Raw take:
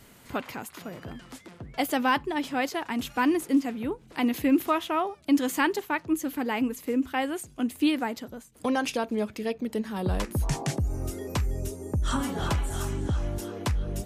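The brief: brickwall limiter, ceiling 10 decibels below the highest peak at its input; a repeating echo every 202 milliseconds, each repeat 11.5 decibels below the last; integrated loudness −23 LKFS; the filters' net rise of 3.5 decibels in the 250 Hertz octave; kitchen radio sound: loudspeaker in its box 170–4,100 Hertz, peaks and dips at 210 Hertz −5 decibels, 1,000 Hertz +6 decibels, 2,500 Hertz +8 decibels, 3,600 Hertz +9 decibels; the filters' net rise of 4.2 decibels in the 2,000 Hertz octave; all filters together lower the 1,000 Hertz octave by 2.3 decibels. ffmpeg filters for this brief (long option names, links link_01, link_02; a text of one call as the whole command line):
ffmpeg -i in.wav -af "equalizer=frequency=250:width_type=o:gain=6.5,equalizer=frequency=1000:width_type=o:gain=-8,equalizer=frequency=2000:width_type=o:gain=3.5,alimiter=limit=-17.5dB:level=0:latency=1,highpass=170,equalizer=frequency=210:width_type=q:width=4:gain=-5,equalizer=frequency=1000:width_type=q:width=4:gain=6,equalizer=frequency=2500:width_type=q:width=4:gain=8,equalizer=frequency=3600:width_type=q:width=4:gain=9,lowpass=frequency=4100:width=0.5412,lowpass=frequency=4100:width=1.3066,aecho=1:1:202|404|606:0.266|0.0718|0.0194,volume=5.5dB" out.wav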